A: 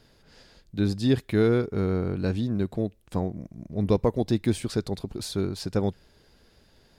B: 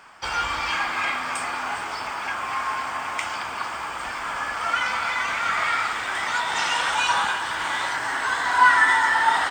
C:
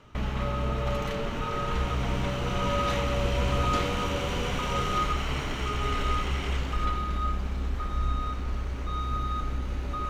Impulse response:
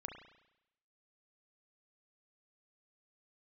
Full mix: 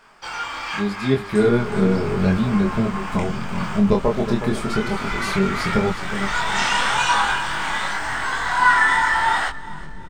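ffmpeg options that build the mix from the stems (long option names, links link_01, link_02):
-filter_complex "[0:a]equalizer=frequency=780:width_type=o:width=2.9:gain=7.5,aecho=1:1:4.9:0.64,asubboost=boost=9:cutoff=130,volume=-2.5dB,asplit=3[link_01][link_02][link_03];[link_02]volume=-11dB[link_04];[1:a]volume=-0.5dB,asplit=2[link_05][link_06];[link_06]volume=-19.5dB[link_07];[2:a]bass=frequency=250:gain=12,treble=frequency=4000:gain=4,aeval=exprs='(tanh(25.1*val(0)+0.7)-tanh(0.7))/25.1':channel_layout=same,flanger=delay=19.5:depth=2.2:speed=2.7,adelay=1250,volume=-2dB[link_08];[link_03]apad=whole_len=419030[link_09];[link_05][link_09]sidechaincompress=threshold=-26dB:ratio=5:attack=41:release=794[link_10];[link_04][link_07]amix=inputs=2:normalize=0,aecho=0:1:366|732|1098|1464|1830|2196:1|0.43|0.185|0.0795|0.0342|0.0147[link_11];[link_01][link_10][link_08][link_11]amix=inputs=4:normalize=0,equalizer=frequency=66:width=1.8:gain=-12.5,dynaudnorm=framelen=480:gausssize=5:maxgain=11.5dB,flanger=delay=22.5:depth=3.8:speed=0.85"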